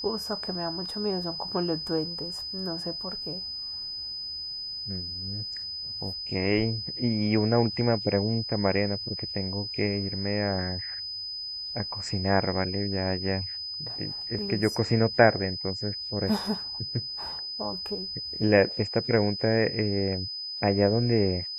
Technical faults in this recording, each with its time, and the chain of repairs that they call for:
whistle 5,000 Hz −33 dBFS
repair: notch filter 5,000 Hz, Q 30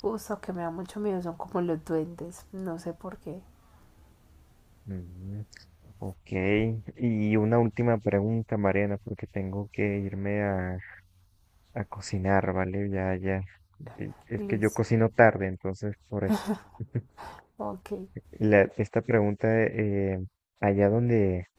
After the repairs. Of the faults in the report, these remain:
none of them is left

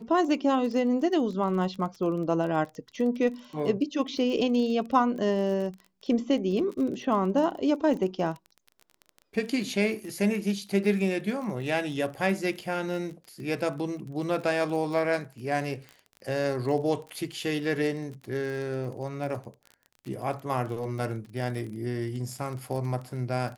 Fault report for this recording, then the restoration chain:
surface crackle 24 per second −35 dBFS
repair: click removal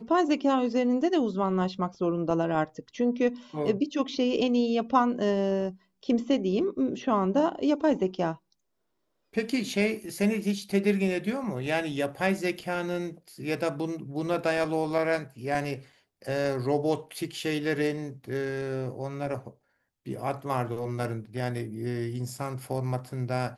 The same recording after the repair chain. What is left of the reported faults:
none of them is left

